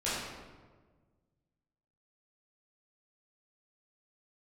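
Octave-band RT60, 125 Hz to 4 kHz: 2.2 s, 1.8 s, 1.6 s, 1.3 s, 1.1 s, 0.85 s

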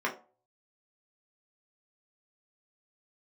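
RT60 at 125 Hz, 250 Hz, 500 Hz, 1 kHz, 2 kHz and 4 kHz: 0.55 s, 0.35 s, 0.40 s, 0.40 s, 0.25 s, 0.20 s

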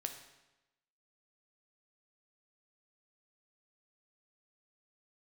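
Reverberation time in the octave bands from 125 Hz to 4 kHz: 1.0 s, 1.0 s, 1.0 s, 1.0 s, 0.95 s, 0.90 s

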